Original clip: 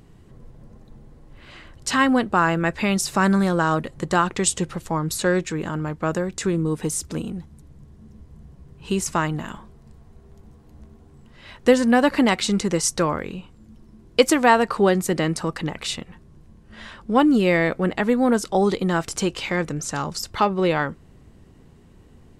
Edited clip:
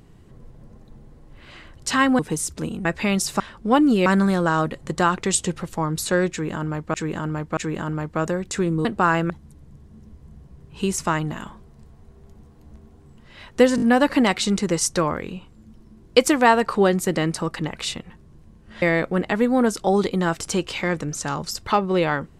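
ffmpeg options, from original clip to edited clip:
-filter_complex "[0:a]asplit=13[s0][s1][s2][s3][s4][s5][s6][s7][s8][s9][s10][s11][s12];[s0]atrim=end=2.192[s13];[s1]atrim=start=6.718:end=7.382[s14];[s2]atrim=start=2.638:end=3.192[s15];[s3]atrim=start=16.838:end=17.502[s16];[s4]atrim=start=3.188:end=6.072[s17];[s5]atrim=start=5.438:end=6.072[s18];[s6]atrim=start=5.438:end=6.722[s19];[s7]atrim=start=2.188:end=2.642[s20];[s8]atrim=start=7.378:end=11.862[s21];[s9]atrim=start=11.838:end=11.862[s22];[s10]atrim=start=11.838:end=11.862[s23];[s11]atrim=start=11.838:end=16.842[s24];[s12]atrim=start=17.498[s25];[s13][s14]acrossfade=d=0.004:c1=hsin:c2=hsin[s26];[s26][s15]acrossfade=d=0.004:c1=hsin:c2=hsin[s27];[s27][s16]acrossfade=d=0.004:c1=hsin:c2=hsin[s28];[s28][s17]acrossfade=d=0.004:c1=hsin:c2=hsin[s29];[s29][s18]acrossfade=d=0.004:c1=hsin:c2=hsin[s30];[s30][s19]acrossfade=d=0.004:c1=hsin:c2=hsin[s31];[s31][s20]acrossfade=d=0.004:c1=hsin:c2=hsin[s32];[s32][s21]acrossfade=d=0.004:c1=hsin:c2=hsin[s33];[s33][s22]acrossfade=d=0.004:c1=hsin:c2=hsin[s34];[s34][s23]acrossfade=d=0.004:c1=hsin:c2=hsin[s35];[s35][s24]acrossfade=d=0.004:c1=hsin:c2=hsin[s36];[s36][s25]acrossfade=d=0.004:c1=hsin:c2=hsin"

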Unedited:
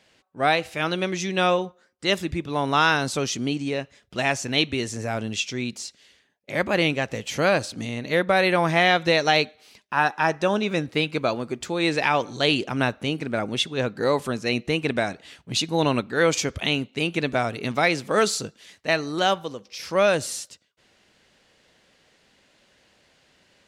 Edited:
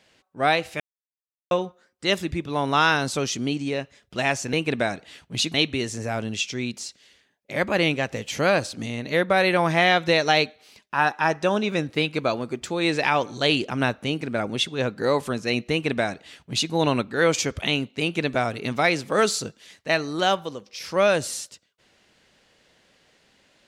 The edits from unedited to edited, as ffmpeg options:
-filter_complex "[0:a]asplit=5[s0][s1][s2][s3][s4];[s0]atrim=end=0.8,asetpts=PTS-STARTPTS,afade=t=out:st=0.796:d=0.004:c=hsin[s5];[s1]atrim=start=0.8:end=1.51,asetpts=PTS-STARTPTS,volume=0[s6];[s2]atrim=start=1.51:end=4.532,asetpts=PTS-STARTPTS,afade=t=in:d=0.004:c=hsin[s7];[s3]atrim=start=14.698:end=15.712[s8];[s4]atrim=start=4.528[s9];[s5][s6][s7]concat=n=3:v=0:a=1[s10];[s10][s8]acrossfade=d=0.004:c1=hsin:c2=hsin[s11];[s11][s9]acrossfade=d=0.004:c1=hsin:c2=hsin"

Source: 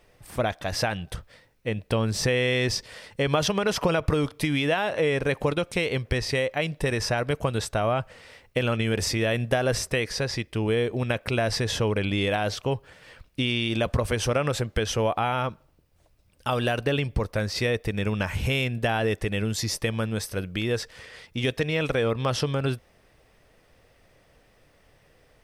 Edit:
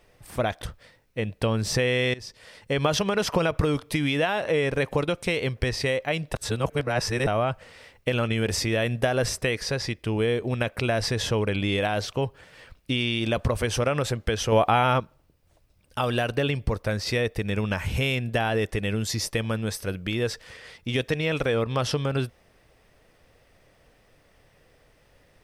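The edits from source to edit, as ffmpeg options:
-filter_complex "[0:a]asplit=7[s0][s1][s2][s3][s4][s5][s6];[s0]atrim=end=0.622[s7];[s1]atrim=start=1.108:end=2.63,asetpts=PTS-STARTPTS,afade=t=out:st=1.518:d=0.004:c=hsin:silence=0.0891251[s8];[s2]atrim=start=2.63:end=6.832,asetpts=PTS-STARTPTS,afade=t=in:d=0.65:silence=0.0891251[s9];[s3]atrim=start=6.828:end=7.762,asetpts=PTS-STARTPTS,areverse[s10];[s4]atrim=start=7.758:end=15.012[s11];[s5]atrim=start=15.008:end=15.492,asetpts=PTS-STARTPTS,volume=1.78[s12];[s6]atrim=start=15.488[s13];[s8][s9]concat=n=2:v=0:a=1[s14];[s7][s14]acrossfade=d=0.004:c1=hsin:c2=hsin[s15];[s15][s10]acrossfade=d=0.004:c1=hsin:c2=hsin[s16];[s16][s11]acrossfade=d=0.004:c1=hsin:c2=hsin[s17];[s17][s12]acrossfade=d=0.004:c1=hsin:c2=hsin[s18];[s18][s13]acrossfade=d=0.004:c1=hsin:c2=hsin"

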